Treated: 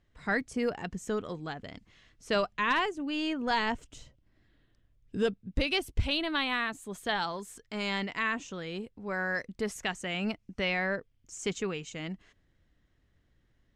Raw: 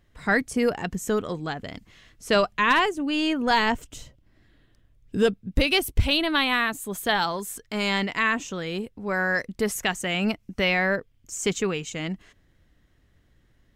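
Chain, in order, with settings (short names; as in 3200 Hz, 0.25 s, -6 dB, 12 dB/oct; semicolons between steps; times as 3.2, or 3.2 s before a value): LPF 7500 Hz 12 dB/oct; gain -7.5 dB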